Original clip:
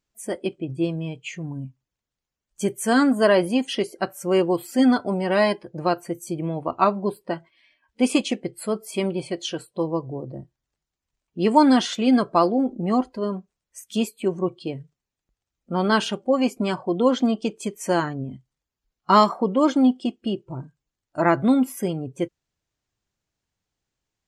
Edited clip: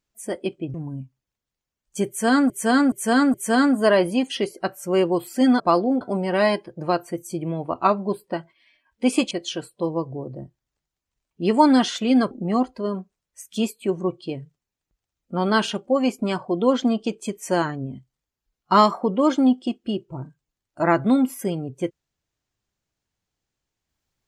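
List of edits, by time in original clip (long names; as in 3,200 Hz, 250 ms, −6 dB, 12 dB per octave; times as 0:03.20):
0:00.74–0:01.38: remove
0:02.72–0:03.14: repeat, 4 plays
0:08.28–0:09.28: remove
0:12.28–0:12.69: move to 0:04.98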